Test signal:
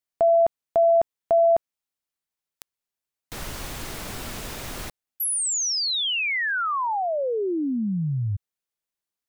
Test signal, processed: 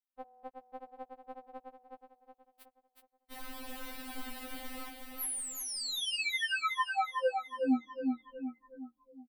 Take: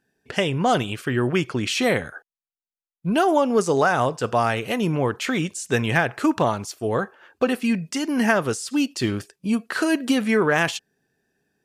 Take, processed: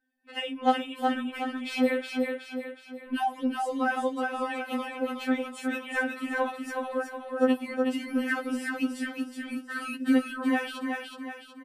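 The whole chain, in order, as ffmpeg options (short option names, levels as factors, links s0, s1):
-af "equalizer=f=6400:w=2:g=-13,aecho=1:1:369|738|1107|1476|1845|2214:0.631|0.29|0.134|0.0614|0.0283|0.013,afftfilt=real='re*3.46*eq(mod(b,12),0)':imag='im*3.46*eq(mod(b,12),0)':win_size=2048:overlap=0.75,volume=0.447"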